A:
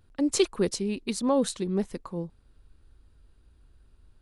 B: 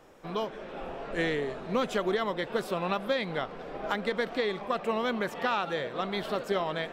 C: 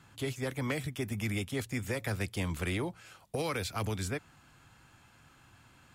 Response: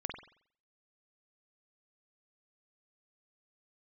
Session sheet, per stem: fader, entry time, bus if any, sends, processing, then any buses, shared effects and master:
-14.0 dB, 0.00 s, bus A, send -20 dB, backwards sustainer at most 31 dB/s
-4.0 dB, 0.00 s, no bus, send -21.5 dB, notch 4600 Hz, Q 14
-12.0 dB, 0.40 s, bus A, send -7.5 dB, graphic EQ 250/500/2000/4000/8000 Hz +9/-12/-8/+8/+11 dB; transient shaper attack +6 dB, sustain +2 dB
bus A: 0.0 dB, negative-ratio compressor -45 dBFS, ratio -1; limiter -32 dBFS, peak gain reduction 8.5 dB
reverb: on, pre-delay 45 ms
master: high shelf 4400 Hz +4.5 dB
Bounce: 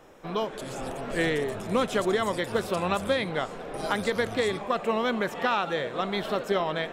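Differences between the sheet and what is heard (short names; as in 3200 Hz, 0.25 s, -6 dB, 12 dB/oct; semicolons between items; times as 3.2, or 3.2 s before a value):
stem A: muted; stem B -4.0 dB -> +2.5 dB; master: missing high shelf 4400 Hz +4.5 dB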